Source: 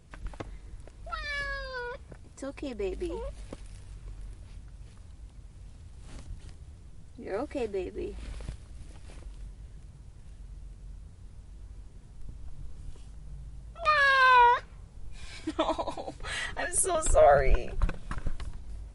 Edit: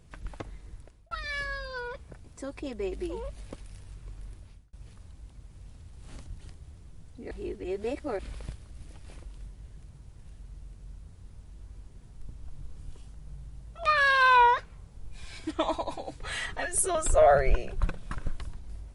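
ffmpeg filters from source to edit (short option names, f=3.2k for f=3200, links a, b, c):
-filter_complex "[0:a]asplit=5[a][b][c][d][e];[a]atrim=end=1.11,asetpts=PTS-STARTPTS,afade=t=out:st=0.74:d=0.37[f];[b]atrim=start=1.11:end=4.73,asetpts=PTS-STARTPTS,afade=t=in:d=0.004:c=hsin,afade=t=out:st=3.26:d=0.36[g];[c]atrim=start=4.73:end=7.312,asetpts=PTS-STARTPTS,afade=t=in:d=0.004:c=hsin[h];[d]atrim=start=7.308:end=8.192,asetpts=PTS-STARTPTS,areverse[i];[e]atrim=start=8.188[j];[f][g][h]concat=n=3:v=0:a=1[k];[k][i]acrossfade=d=0.004:c1=hsin:c2=hsin[l];[l][j]acrossfade=d=0.004:c1=hsin:c2=hsin"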